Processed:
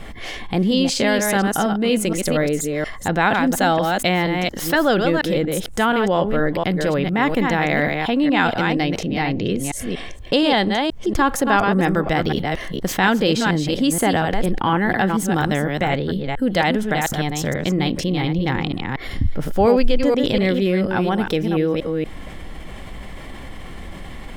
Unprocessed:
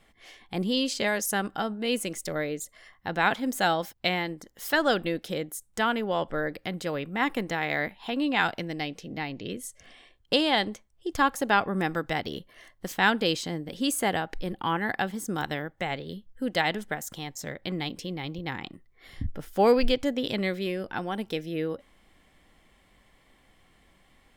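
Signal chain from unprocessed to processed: reverse delay 0.237 s, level -6.5 dB; tilt -1.5 dB/oct; fast leveller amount 50%

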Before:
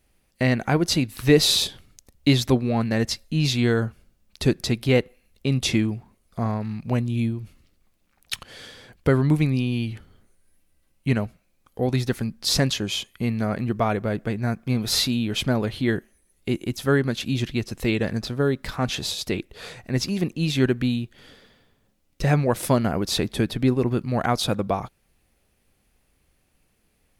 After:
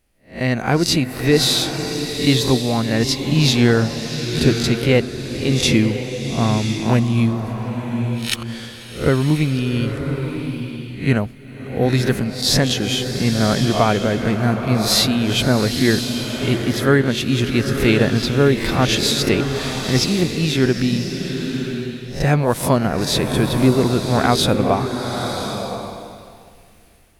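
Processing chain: spectral swells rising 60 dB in 0.33 s; AGC gain up to 16 dB; bloom reverb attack 1.04 s, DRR 5.5 dB; gain -2.5 dB

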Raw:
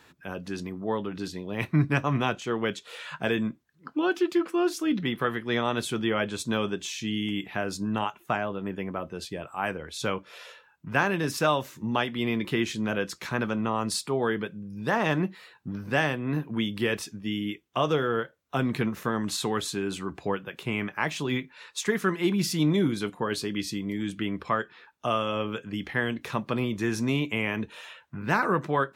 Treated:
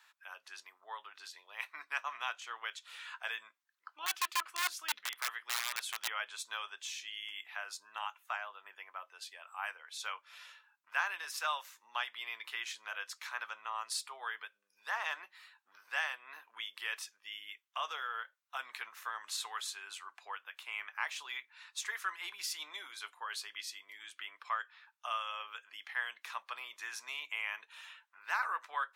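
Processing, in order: 4.06–6.08 wrapped overs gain 19 dB; HPF 940 Hz 24 dB/oct; gain -7 dB

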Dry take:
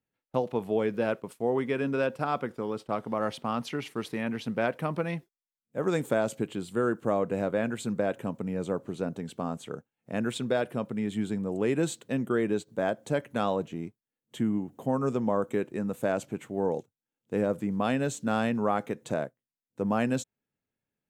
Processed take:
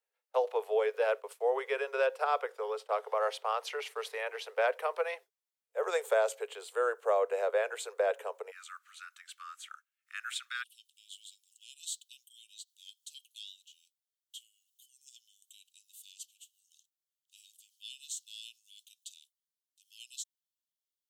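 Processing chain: steep high-pass 420 Hz 96 dB/oct, from 8.5 s 1200 Hz, from 10.62 s 2900 Hz

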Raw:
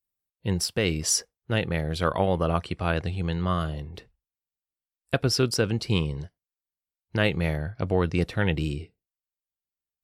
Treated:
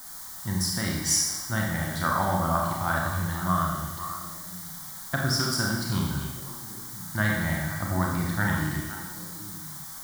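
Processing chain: HPF 120 Hz 6 dB/oct; bell 1800 Hz +4 dB 0.77 oct; added noise white -43 dBFS; fixed phaser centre 1100 Hz, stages 4; delay with a stepping band-pass 0.258 s, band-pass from 2700 Hz, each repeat -1.4 oct, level -5.5 dB; Schroeder reverb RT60 0.99 s, combs from 29 ms, DRR -1.5 dB

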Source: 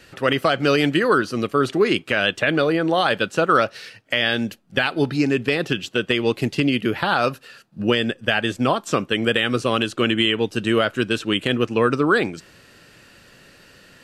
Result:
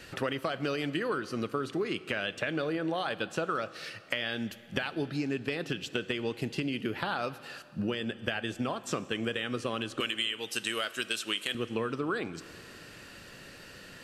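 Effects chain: 10–11.55 tilt +4.5 dB/oct; compressor 6:1, threshold -30 dBFS, peak gain reduction 19 dB; reverb RT60 2.5 s, pre-delay 7 ms, DRR 15 dB

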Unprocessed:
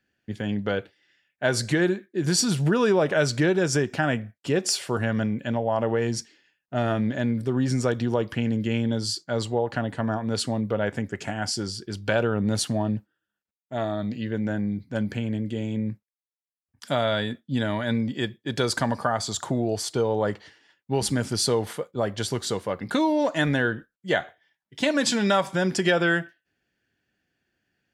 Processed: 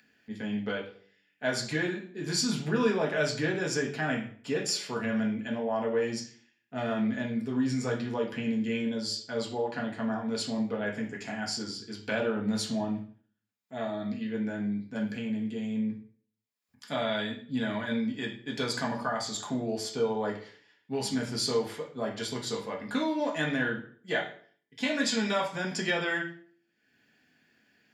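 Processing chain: bell 8800 Hz -3.5 dB 0.94 oct; de-hum 48.65 Hz, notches 10; reverb RT60 0.50 s, pre-delay 3 ms, DRR -1.5 dB; upward compressor, threshold -45 dBFS; gain -8 dB

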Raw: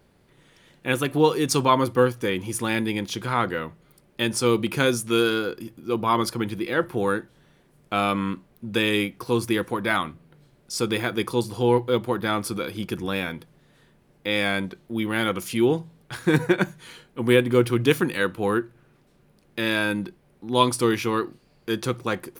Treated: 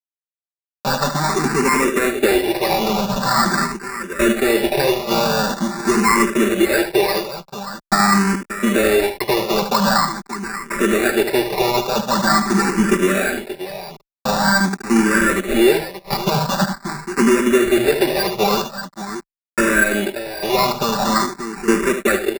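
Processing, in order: self-modulated delay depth 0.42 ms; low shelf 350 Hz -4 dB; in parallel at +1 dB: compressor, threshold -31 dBFS, peak gain reduction 15.5 dB; on the sum: fuzz box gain 36 dB, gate -34 dBFS; transient shaper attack +3 dB, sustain -4 dB; BPF 190–4200 Hz; on a send: tapped delay 74/581 ms -9/-11 dB; on the sum: sample-and-hold 14×; comb 5.1 ms, depth 94%; endless phaser +0.45 Hz

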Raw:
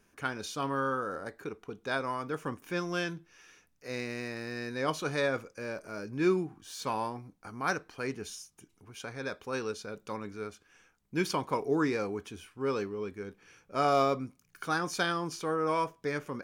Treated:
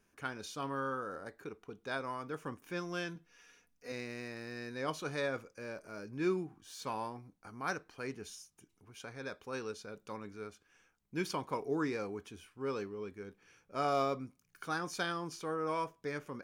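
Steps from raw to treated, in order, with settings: 3.15–3.92 comb 4.2 ms, depth 64%; gain -6 dB

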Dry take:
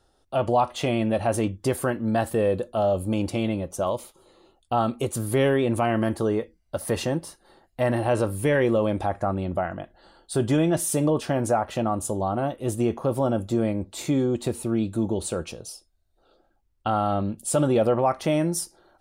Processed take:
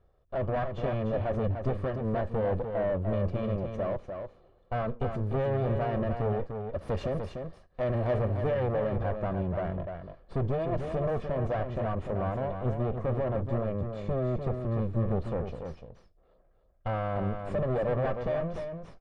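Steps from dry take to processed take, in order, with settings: minimum comb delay 1.7 ms; low shelf 490 Hz +6 dB; soft clip -21 dBFS, distortion -11 dB; tape spacing loss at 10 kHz 41 dB, from 6.81 s at 10 kHz 27 dB, from 8.17 s at 10 kHz 41 dB; echo 0.297 s -6.5 dB; gain -2.5 dB

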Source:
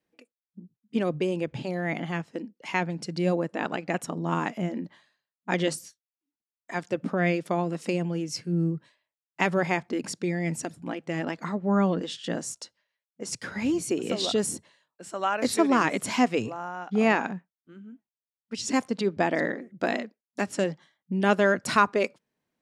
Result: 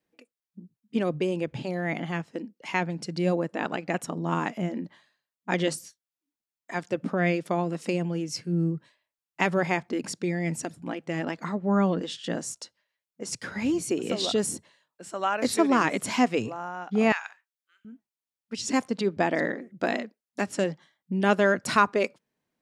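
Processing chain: 17.12–17.85 Bessel high-pass 1700 Hz, order 4

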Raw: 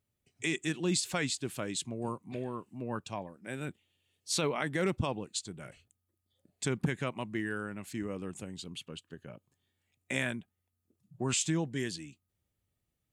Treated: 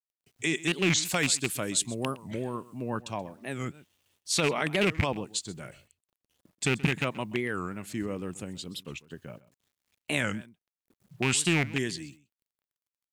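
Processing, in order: rattling part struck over -32 dBFS, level -20 dBFS; 1.05–2.9 high shelf 6800 Hz +11.5 dB; requantised 12-bit, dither none; echo 0.129 s -19 dB; record warp 45 rpm, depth 250 cents; gain +4 dB

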